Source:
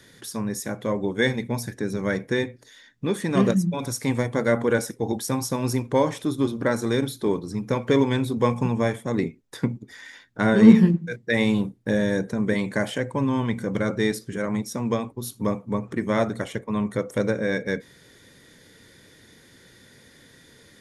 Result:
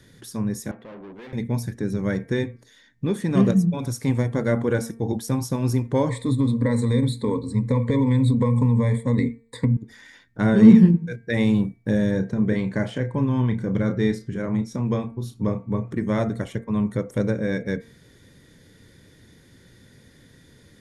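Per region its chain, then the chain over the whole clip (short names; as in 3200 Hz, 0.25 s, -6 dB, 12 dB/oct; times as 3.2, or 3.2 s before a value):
0.71–1.33 tube stage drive 36 dB, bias 0.55 + three-band isolator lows -16 dB, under 220 Hz, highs -21 dB, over 3600 Hz
6.09–9.77 ripple EQ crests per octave 0.99, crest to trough 18 dB + compressor, threshold -17 dBFS
12.11–15.91 air absorption 63 m + doubler 32 ms -10 dB
whole clip: low shelf 260 Hz +12 dB; de-hum 228.2 Hz, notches 11; gain -4.5 dB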